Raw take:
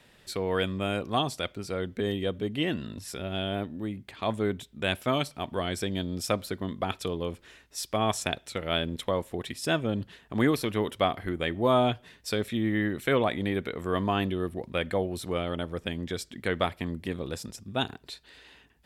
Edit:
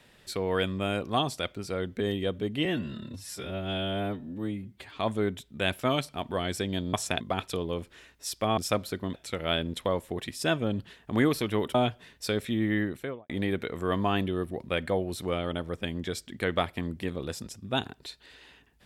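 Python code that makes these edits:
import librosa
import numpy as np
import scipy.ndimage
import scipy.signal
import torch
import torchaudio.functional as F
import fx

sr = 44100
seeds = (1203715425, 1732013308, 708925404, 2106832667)

y = fx.studio_fade_out(x, sr, start_s=12.79, length_s=0.54)
y = fx.edit(y, sr, fx.stretch_span(start_s=2.65, length_s=1.55, factor=1.5),
    fx.swap(start_s=6.16, length_s=0.56, other_s=8.09, other_length_s=0.27),
    fx.cut(start_s=10.97, length_s=0.81), tone=tone)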